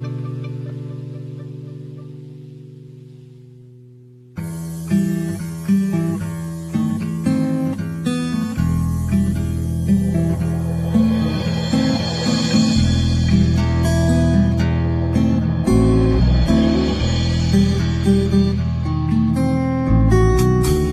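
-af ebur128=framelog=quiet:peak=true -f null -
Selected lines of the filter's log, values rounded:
Integrated loudness:
  I:         -18.0 LUFS
  Threshold: -28.9 LUFS
Loudness range:
  LRA:        15.2 LU
  Threshold: -38.8 LUFS
  LRA low:   -31.6 LUFS
  LRA high:  -16.4 LUFS
True peak:
  Peak:       -2.8 dBFS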